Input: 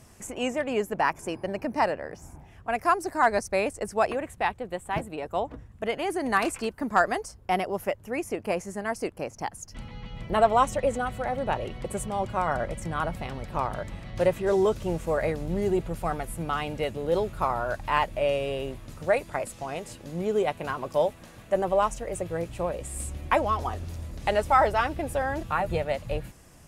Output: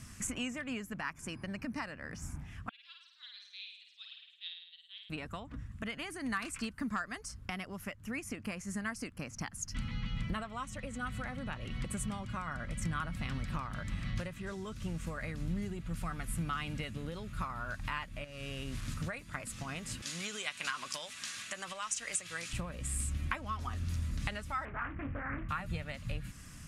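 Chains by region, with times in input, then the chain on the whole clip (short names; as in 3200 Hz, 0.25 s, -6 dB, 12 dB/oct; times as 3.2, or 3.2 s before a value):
2.69–5.1 Butterworth band-pass 3500 Hz, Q 5.7 + flutter echo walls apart 9.1 m, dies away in 0.83 s
18.24–18.94 delta modulation 64 kbps, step -43 dBFS + compressor 4:1, threshold -33 dBFS
20.02–22.53 compressor 2.5:1, threshold -27 dBFS + weighting filter ITU-R 468
24.65–25.49 Chebyshev low-pass 2300 Hz, order 5 + flutter echo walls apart 3.7 m, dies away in 0.21 s + Doppler distortion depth 0.44 ms
whole clip: compressor 6:1, threshold -35 dBFS; LPF 11000 Hz 12 dB/oct; band shelf 560 Hz -14 dB; gain +4 dB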